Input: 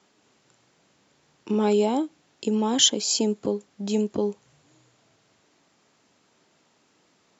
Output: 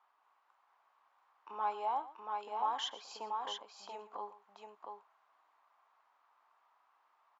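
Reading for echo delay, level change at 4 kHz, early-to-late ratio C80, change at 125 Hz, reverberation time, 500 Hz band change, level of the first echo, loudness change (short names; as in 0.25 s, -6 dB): 0.118 s, -18.5 dB, none, under -35 dB, none, -22.0 dB, -16.0 dB, -15.5 dB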